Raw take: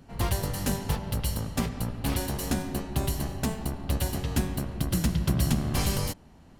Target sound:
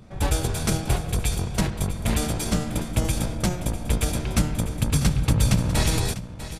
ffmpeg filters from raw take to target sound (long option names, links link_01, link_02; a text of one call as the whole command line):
ffmpeg -i in.wav -af "asetrate=36028,aresample=44100,atempo=1.22405,aecho=1:1:647:0.211,volume=5dB" out.wav